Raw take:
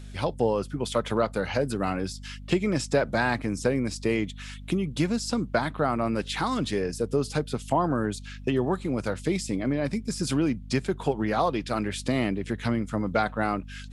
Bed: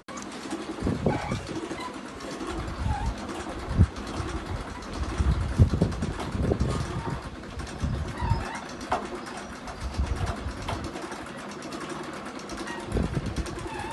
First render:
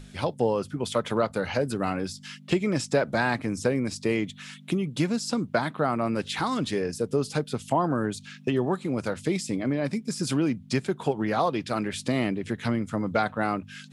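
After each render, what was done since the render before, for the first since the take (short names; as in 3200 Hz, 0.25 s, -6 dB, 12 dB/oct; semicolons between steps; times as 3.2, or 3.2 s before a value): notches 50/100 Hz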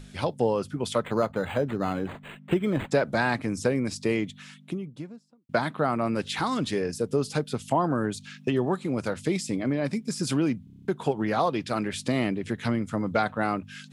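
1.05–2.91 decimation joined by straight lines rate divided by 8×; 4.03–5.49 studio fade out; 10.64 stutter in place 0.03 s, 8 plays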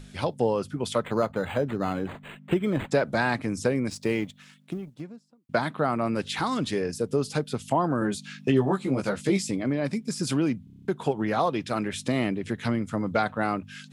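3.9–5.01 G.711 law mismatch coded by A; 8–9.51 doubler 15 ms -2.5 dB; 11.08–12.39 notch 4600 Hz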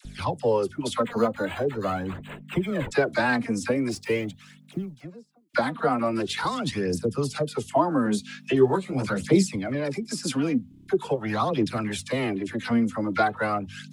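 dispersion lows, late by 52 ms, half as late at 790 Hz; phaser 0.43 Hz, delay 4.4 ms, feedback 54%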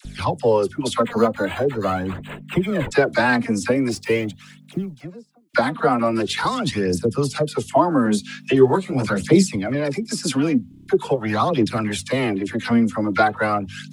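gain +5.5 dB; limiter -3 dBFS, peak gain reduction 1 dB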